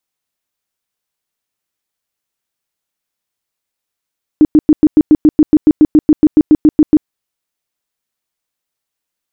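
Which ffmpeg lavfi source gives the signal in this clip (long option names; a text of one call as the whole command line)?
ffmpeg -f lavfi -i "aevalsrc='0.794*sin(2*PI*305*mod(t,0.14))*lt(mod(t,0.14),12/305)':duration=2.66:sample_rate=44100" out.wav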